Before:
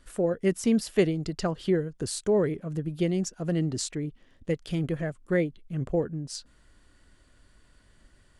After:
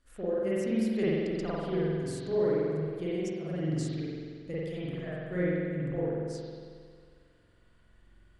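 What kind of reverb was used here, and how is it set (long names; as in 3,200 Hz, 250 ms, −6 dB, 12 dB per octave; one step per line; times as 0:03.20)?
spring reverb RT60 2 s, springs 45 ms, chirp 50 ms, DRR −9.5 dB
level −13.5 dB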